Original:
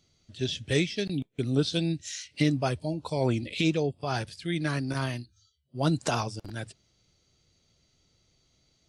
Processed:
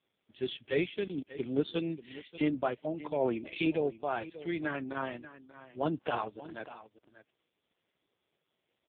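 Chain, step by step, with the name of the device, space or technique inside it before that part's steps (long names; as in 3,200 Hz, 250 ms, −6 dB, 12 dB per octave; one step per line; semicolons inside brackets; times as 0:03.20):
satellite phone (band-pass filter 320–3,300 Hz; single-tap delay 587 ms −16 dB; AMR narrowband 4.75 kbit/s 8,000 Hz)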